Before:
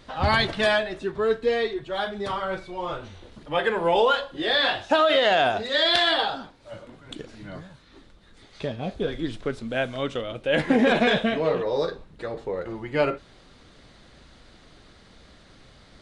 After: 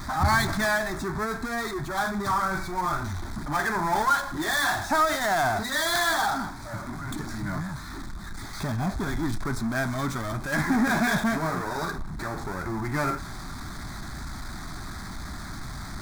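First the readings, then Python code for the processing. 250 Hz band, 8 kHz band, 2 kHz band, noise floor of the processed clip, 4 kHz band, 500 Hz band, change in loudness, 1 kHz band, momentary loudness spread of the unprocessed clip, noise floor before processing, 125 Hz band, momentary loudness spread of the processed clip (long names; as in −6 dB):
0.0 dB, can't be measured, 0.0 dB, −37 dBFS, −8.0 dB, −8.5 dB, −3.0 dB, +1.0 dB, 18 LU, −53 dBFS, +5.0 dB, 15 LU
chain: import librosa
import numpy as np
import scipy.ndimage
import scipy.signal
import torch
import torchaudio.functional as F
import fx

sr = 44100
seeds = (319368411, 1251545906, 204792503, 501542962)

y = fx.power_curve(x, sr, exponent=0.5)
y = fx.fixed_phaser(y, sr, hz=1200.0, stages=4)
y = y * librosa.db_to_amplitude(-3.0)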